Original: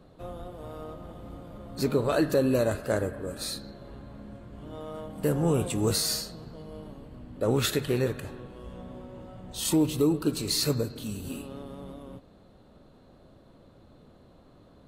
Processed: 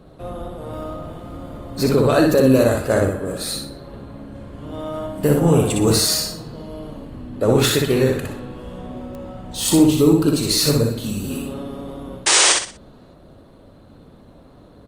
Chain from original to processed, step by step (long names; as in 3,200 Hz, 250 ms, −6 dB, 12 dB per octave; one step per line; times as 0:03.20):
0:11.04–0:11.50: dynamic equaliser 140 Hz, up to +3 dB, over −58 dBFS, Q 6
0:12.26–0:12.53: sound drawn into the spectrogram noise 300–9,500 Hz −23 dBFS
repeating echo 61 ms, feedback 33%, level −3 dB
digital clicks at 0:09.15, −28 dBFS
level +8 dB
Opus 32 kbit/s 48,000 Hz